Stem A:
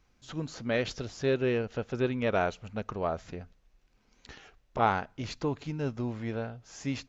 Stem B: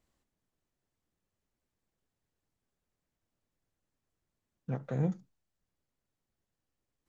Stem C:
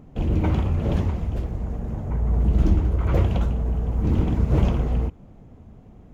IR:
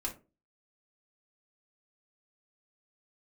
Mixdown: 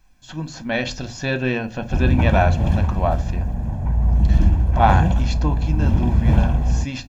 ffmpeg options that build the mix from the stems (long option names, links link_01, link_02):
-filter_complex "[0:a]bandreject=frequency=60:width_type=h:width=6,bandreject=frequency=120:width_type=h:width=6,volume=1dB,asplit=3[link_01][link_02][link_03];[link_02]volume=-3dB[link_04];[1:a]crystalizer=i=3:c=0,volume=2dB,asplit=2[link_05][link_06];[link_06]volume=-6dB[link_07];[2:a]adelay=1750,volume=-2dB[link_08];[link_03]apad=whole_len=312250[link_09];[link_05][link_09]sidechaingate=range=-33dB:threshold=-56dB:ratio=16:detection=peak[link_10];[3:a]atrim=start_sample=2205[link_11];[link_04][link_07]amix=inputs=2:normalize=0[link_12];[link_12][link_11]afir=irnorm=-1:irlink=0[link_13];[link_01][link_10][link_08][link_13]amix=inputs=4:normalize=0,aecho=1:1:1.2:0.65,dynaudnorm=framelen=130:gausssize=13:maxgain=4dB"